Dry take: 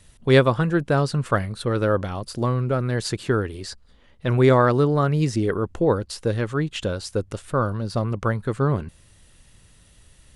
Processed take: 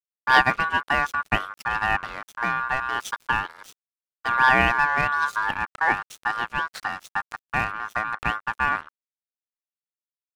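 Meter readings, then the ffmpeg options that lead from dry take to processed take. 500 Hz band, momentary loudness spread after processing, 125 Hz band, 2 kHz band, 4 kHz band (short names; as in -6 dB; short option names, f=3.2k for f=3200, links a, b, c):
-14.5 dB, 11 LU, -17.0 dB, +9.5 dB, +0.5 dB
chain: -af "adynamicequalizer=threshold=0.00282:dfrequency=8600:dqfactor=1.6:tfrequency=8600:tqfactor=1.6:attack=5:release=100:ratio=0.375:range=2:mode=cutabove:tftype=bell,aeval=exprs='sgn(val(0))*max(abs(val(0))-0.0224,0)':c=same,aeval=exprs='val(0)*sin(2*PI*1300*n/s)':c=same,volume=1.5dB"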